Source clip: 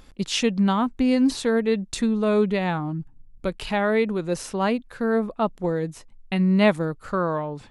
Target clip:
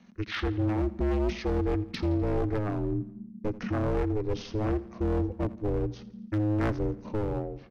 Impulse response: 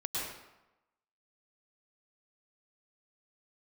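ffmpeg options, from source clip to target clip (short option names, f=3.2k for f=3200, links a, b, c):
-filter_complex "[0:a]adynamicequalizer=threshold=0.0141:dfrequency=180:dqfactor=3.9:tfrequency=180:tqfactor=3.9:attack=5:release=100:ratio=0.375:range=4:mode=cutabove:tftype=bell,acrossover=split=430|960[a][b][c];[a]dynaudnorm=f=110:g=9:m=9dB[d];[d][b][c]amix=inputs=3:normalize=0,asetrate=24750,aresample=44100,atempo=1.7818,asoftclip=type=hard:threshold=-17.5dB,aeval=exprs='val(0)*sin(2*PI*210*n/s)':c=same,aecho=1:1:84|168|252|336|420:0.119|0.0642|0.0347|0.0187|0.0101,volume=-4dB"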